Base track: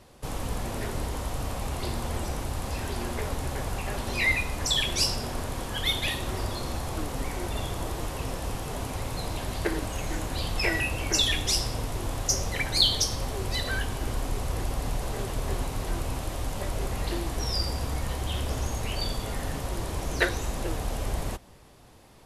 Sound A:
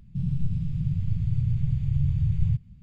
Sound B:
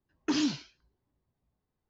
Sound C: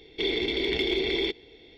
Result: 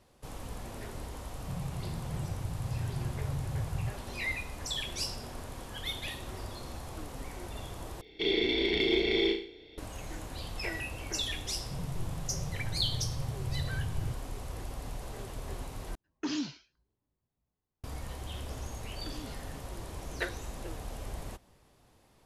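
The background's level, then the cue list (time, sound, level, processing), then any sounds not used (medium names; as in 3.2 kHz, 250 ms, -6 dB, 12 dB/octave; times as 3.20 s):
base track -10 dB
1.33 s: add A -10 dB + high-pass 49 Hz
8.01 s: replace with C -3.5 dB + flutter echo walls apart 6.1 m, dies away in 0.47 s
11.56 s: add A -11.5 dB
15.95 s: replace with B -5.5 dB + crackling interface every 0.73 s, samples 2048, repeat, from 0.91 s
18.78 s: add B -9.5 dB + compression, threshold -33 dBFS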